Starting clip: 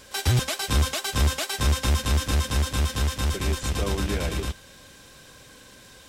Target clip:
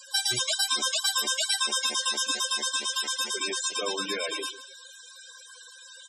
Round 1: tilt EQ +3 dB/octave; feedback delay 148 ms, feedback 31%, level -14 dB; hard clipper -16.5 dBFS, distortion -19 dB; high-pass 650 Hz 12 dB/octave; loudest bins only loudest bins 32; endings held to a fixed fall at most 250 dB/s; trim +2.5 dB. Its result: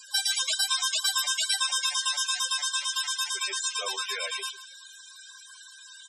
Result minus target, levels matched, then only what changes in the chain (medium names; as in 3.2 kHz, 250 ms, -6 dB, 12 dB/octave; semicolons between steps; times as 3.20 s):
250 Hz band -19.5 dB
change: high-pass 260 Hz 12 dB/octave